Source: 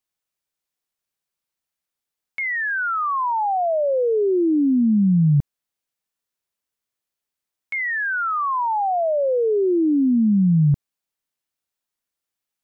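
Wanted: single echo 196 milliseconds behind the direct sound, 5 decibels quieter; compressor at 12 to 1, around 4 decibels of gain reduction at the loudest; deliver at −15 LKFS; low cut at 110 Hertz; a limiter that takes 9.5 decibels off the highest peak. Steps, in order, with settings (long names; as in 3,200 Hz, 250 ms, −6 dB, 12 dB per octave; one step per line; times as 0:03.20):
high-pass filter 110 Hz
downward compressor 12 to 1, threshold −19 dBFS
brickwall limiter −27.5 dBFS
single-tap delay 196 ms −5 dB
level +15 dB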